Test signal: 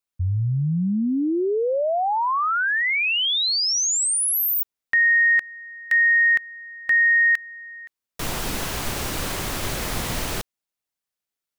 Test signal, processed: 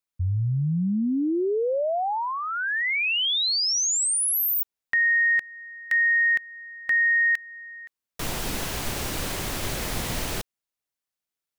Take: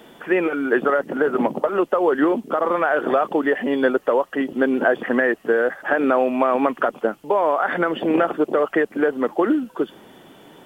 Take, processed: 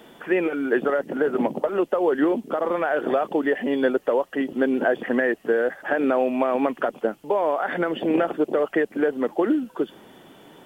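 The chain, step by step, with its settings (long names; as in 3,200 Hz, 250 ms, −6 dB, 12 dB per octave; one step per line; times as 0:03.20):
dynamic equaliser 1,200 Hz, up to −6 dB, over −36 dBFS, Q 1.8
level −2 dB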